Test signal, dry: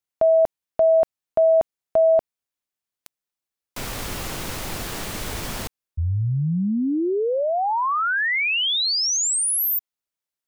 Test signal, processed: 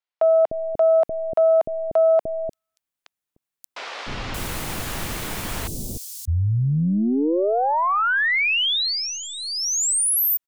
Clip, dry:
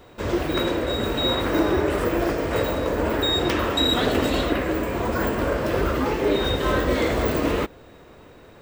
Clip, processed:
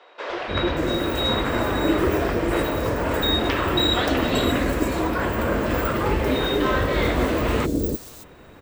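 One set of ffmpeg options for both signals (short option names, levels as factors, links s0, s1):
-filter_complex "[0:a]aeval=exprs='0.422*(cos(1*acos(clip(val(0)/0.422,-1,1)))-cos(1*PI/2))+0.0335*(cos(2*acos(clip(val(0)/0.422,-1,1)))-cos(2*PI/2))':c=same,acrossover=split=470|5100[s0][s1][s2];[s0]adelay=300[s3];[s2]adelay=580[s4];[s3][s1][s4]amix=inputs=3:normalize=0,volume=1.26"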